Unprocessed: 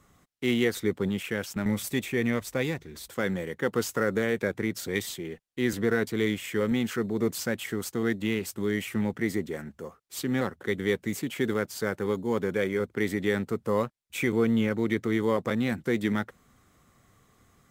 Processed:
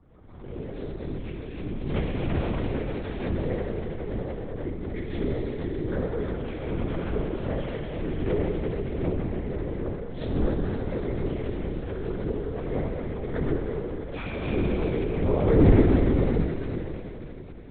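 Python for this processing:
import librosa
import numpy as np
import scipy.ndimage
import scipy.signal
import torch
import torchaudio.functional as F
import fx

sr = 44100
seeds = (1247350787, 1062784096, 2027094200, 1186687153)

y = fx.cycle_switch(x, sr, every=2, mode='muted')
y = fx.highpass(y, sr, hz=45.0, slope=6)
y = fx.tilt_shelf(y, sr, db=9.0, hz=1200.0)
y = fx.rotary_switch(y, sr, hz=5.0, then_hz=1.2, switch_at_s=7.56)
y = fx.auto_swell(y, sr, attack_ms=341.0)
y = fx.echo_wet_highpass(y, sr, ms=263, feedback_pct=68, hz=2700.0, wet_db=-5)
y = fx.rev_plate(y, sr, seeds[0], rt60_s=3.9, hf_ratio=1.0, predelay_ms=0, drr_db=-6.0)
y = fx.lpc_vocoder(y, sr, seeds[1], excitation='whisper', order=8)
y = fx.pre_swell(y, sr, db_per_s=50.0)
y = F.gain(torch.from_numpy(y), 2.0).numpy()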